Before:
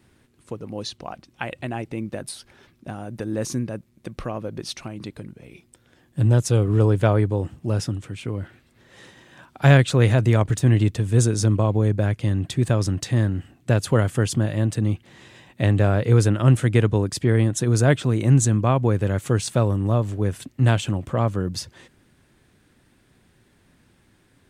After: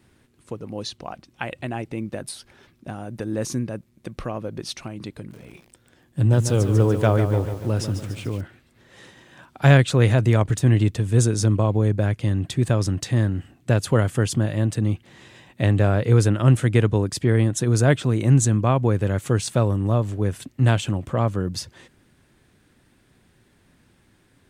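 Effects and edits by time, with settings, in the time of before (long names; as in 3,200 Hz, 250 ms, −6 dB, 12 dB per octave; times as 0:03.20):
0:05.16–0:08.41: feedback echo at a low word length 145 ms, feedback 55%, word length 7 bits, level −8.5 dB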